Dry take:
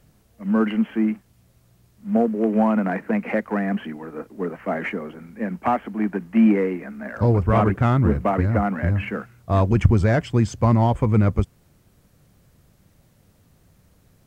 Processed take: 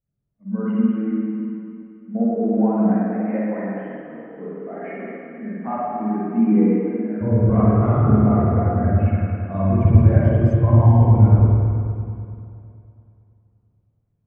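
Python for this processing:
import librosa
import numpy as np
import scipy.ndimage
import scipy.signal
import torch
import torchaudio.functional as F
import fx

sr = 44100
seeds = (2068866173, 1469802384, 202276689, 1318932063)

y = fx.rev_spring(x, sr, rt60_s=3.9, pass_ms=(47, 52), chirp_ms=50, drr_db=-8.0)
y = fx.spectral_expand(y, sr, expansion=1.5)
y = F.gain(torch.from_numpy(y), -4.5).numpy()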